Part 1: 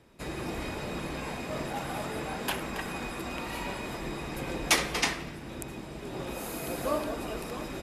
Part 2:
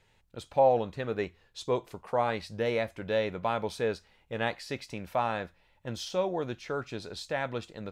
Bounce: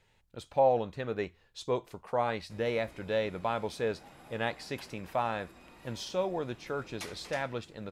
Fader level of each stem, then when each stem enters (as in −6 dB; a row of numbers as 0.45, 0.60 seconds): −19.0, −2.0 decibels; 2.30, 0.00 seconds